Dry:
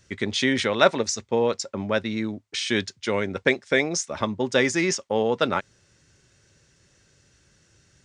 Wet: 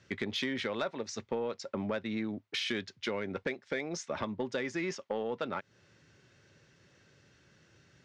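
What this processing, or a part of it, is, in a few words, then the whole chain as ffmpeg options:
AM radio: -af "highpass=110,lowpass=3700,acompressor=threshold=-30dB:ratio=8,asoftclip=type=tanh:threshold=-22.5dB"

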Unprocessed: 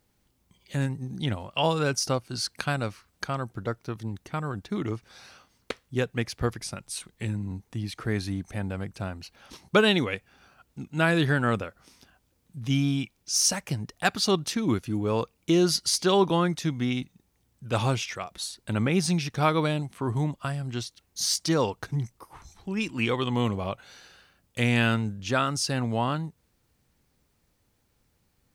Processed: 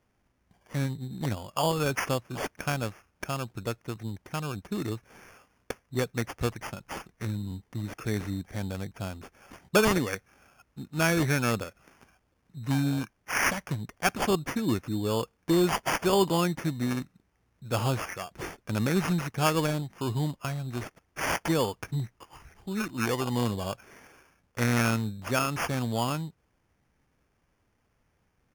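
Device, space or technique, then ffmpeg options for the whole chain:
crushed at another speed: -af "asetrate=35280,aresample=44100,acrusher=samples=14:mix=1:aa=0.000001,asetrate=55125,aresample=44100,volume=-2dB"

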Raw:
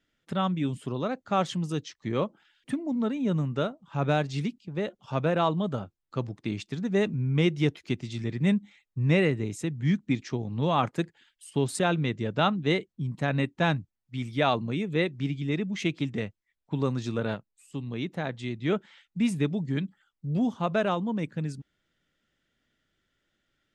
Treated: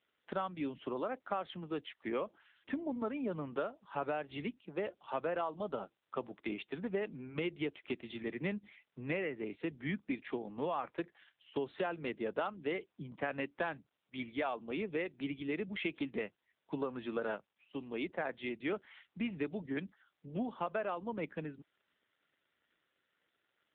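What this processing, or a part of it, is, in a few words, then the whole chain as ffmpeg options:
voicemail: -filter_complex "[0:a]highpass=frequency=120:width=0.5412,highpass=frequency=120:width=1.3066,asettb=1/sr,asplit=3[link_01][link_02][link_03];[link_01]atrim=end=11.844[link_04];[link_02]atrim=start=11.84:end=12.75,asetpts=PTS-STARTPTS,afade=type=in:duration=0.004:curve=qsin,afade=type=out:start_time=0.906:duration=0.004:curve=qsin,highshelf=frequency=3800:gain=-5.5[link_05];[link_03]atrim=start=12.746[link_06];[link_04][link_05]acrossfade=duration=0.004:curve1=hsin:curve2=qsin[link_07];[link_07][link_06]acrossfade=duration=0.004:curve1=qsin:curve2=hsin,highpass=390,lowpass=3200,acompressor=threshold=-33dB:ratio=12,volume=1.5dB" -ar 8000 -c:a libopencore_amrnb -b:a 7950

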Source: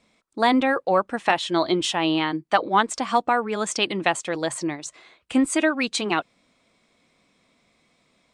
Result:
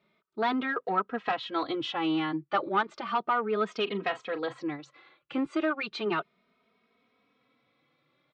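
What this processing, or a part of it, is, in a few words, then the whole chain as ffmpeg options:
barber-pole flanger into a guitar amplifier: -filter_complex "[0:a]asplit=3[link_01][link_02][link_03];[link_01]afade=type=out:start_time=3.86:duration=0.02[link_04];[link_02]asplit=2[link_05][link_06];[link_06]adelay=39,volume=-13.5dB[link_07];[link_05][link_07]amix=inputs=2:normalize=0,afade=type=in:start_time=3.86:duration=0.02,afade=type=out:start_time=4.6:duration=0.02[link_08];[link_03]afade=type=in:start_time=4.6:duration=0.02[link_09];[link_04][link_08][link_09]amix=inputs=3:normalize=0,asplit=2[link_10][link_11];[link_11]adelay=2.9,afreqshift=0.34[link_12];[link_10][link_12]amix=inputs=2:normalize=1,asoftclip=type=tanh:threshold=-17dB,highpass=84,equalizer=frequency=89:width_type=q:width=4:gain=-10,equalizer=frequency=140:width_type=q:width=4:gain=5,equalizer=frequency=410:width_type=q:width=4:gain=6,equalizer=frequency=1300:width_type=q:width=4:gain=8,lowpass=frequency=4000:width=0.5412,lowpass=frequency=4000:width=1.3066,volume=-4.5dB"

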